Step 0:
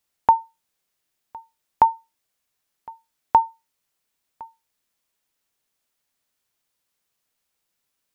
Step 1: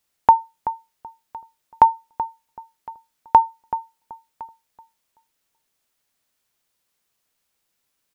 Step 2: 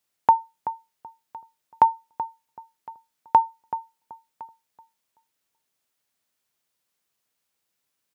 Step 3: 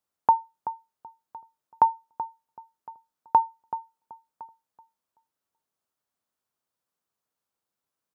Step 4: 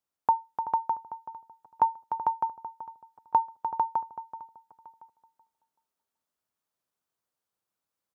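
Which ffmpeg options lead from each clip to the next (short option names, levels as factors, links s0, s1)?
-filter_complex "[0:a]asplit=2[s0][s1];[s1]adelay=380,lowpass=f=1100:p=1,volume=0.282,asplit=2[s2][s3];[s3]adelay=380,lowpass=f=1100:p=1,volume=0.25,asplit=2[s4][s5];[s5]adelay=380,lowpass=f=1100:p=1,volume=0.25[s6];[s0][s2][s4][s6]amix=inputs=4:normalize=0,volume=1.41"
-af "highpass=78,volume=0.631"
-af "highshelf=f=1600:t=q:w=1.5:g=-6,volume=0.631"
-af "aecho=1:1:299|449|607:0.355|0.668|0.501,volume=0.631"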